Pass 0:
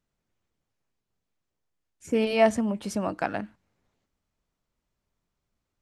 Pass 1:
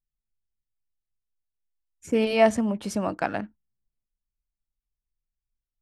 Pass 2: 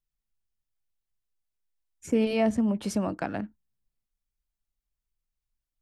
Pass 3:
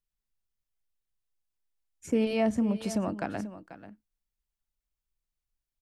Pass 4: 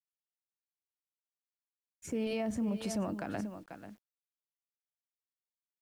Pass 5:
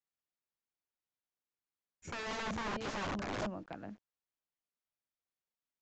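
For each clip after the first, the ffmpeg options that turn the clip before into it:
-af "anlmdn=0.00251,volume=1.5dB"
-filter_complex "[0:a]acrossover=split=380[a][b];[b]acompressor=threshold=-37dB:ratio=2[c];[a][c]amix=inputs=2:normalize=0,volume=1dB"
-af "aecho=1:1:488:0.2,volume=-2dB"
-af "alimiter=level_in=2dB:limit=-24dB:level=0:latency=1:release=44,volume=-2dB,acrusher=bits=10:mix=0:aa=0.000001,volume=-1dB"
-af "aeval=exprs='(mod(50.1*val(0)+1,2)-1)/50.1':c=same,aresample=16000,aresample=44100,highshelf=f=3.4k:g=-11.5,volume=3dB"

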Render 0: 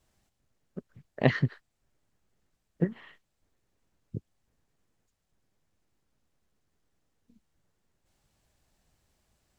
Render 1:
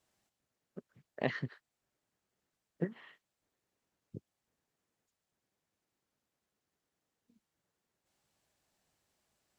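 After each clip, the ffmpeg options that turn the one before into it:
-af "highpass=f=270:p=1,alimiter=limit=-11dB:level=0:latency=1:release=435,volume=-4dB"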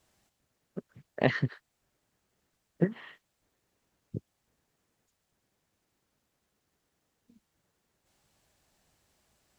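-af "lowshelf=f=87:g=8.5,volume=7.5dB"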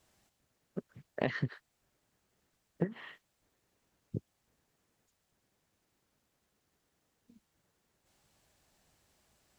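-af "acompressor=threshold=-28dB:ratio=6"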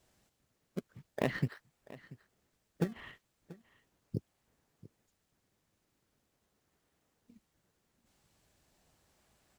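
-filter_complex "[0:a]asplit=2[a][b];[b]acrusher=samples=28:mix=1:aa=0.000001:lfo=1:lforange=44.8:lforate=0.4,volume=-8.5dB[c];[a][c]amix=inputs=2:normalize=0,aecho=1:1:686:0.112,volume=-1.5dB"

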